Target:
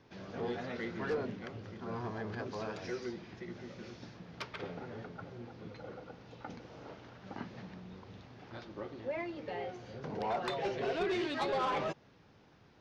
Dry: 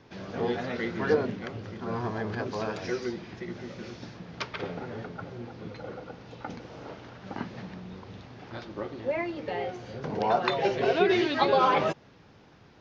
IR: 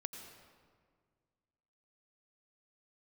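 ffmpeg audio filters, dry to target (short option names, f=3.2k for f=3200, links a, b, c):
-af "asoftclip=type=tanh:threshold=-21dB,volume=-7dB"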